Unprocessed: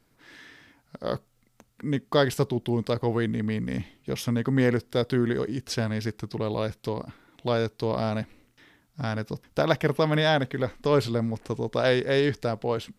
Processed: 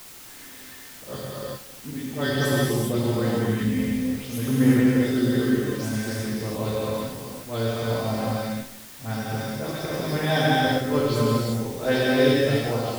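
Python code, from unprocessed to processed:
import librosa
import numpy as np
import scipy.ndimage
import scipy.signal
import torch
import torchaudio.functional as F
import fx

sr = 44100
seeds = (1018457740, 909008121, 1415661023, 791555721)

y = fx.spec_delay(x, sr, highs='late', ms=137)
y = fx.auto_swell(y, sr, attack_ms=111.0)
y = fx.high_shelf(y, sr, hz=7200.0, db=12.0)
y = fx.comb_fb(y, sr, f0_hz=260.0, decay_s=0.25, harmonics='all', damping=0.0, mix_pct=80)
y = y + 10.0 ** (-18.5 / 20.0) * np.pad(y, (int(244 * sr / 1000.0), 0))[:len(y)]
y = fx.rev_gated(y, sr, seeds[0], gate_ms=430, shape='flat', drr_db=-6.5)
y = fx.quant_dither(y, sr, seeds[1], bits=8, dither='triangular')
y = fx.low_shelf(y, sr, hz=450.0, db=4.0)
y = F.gain(torch.from_numpy(y), 4.0).numpy()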